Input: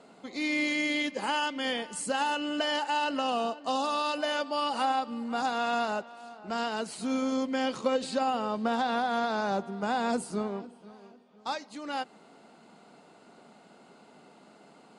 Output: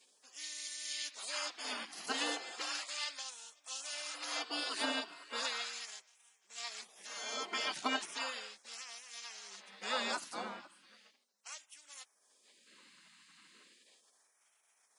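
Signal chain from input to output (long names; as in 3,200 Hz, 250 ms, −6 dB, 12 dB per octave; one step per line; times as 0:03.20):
auto-filter high-pass sine 0.36 Hz 440–4,300 Hz
gate on every frequency bin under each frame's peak −20 dB weak
level +4 dB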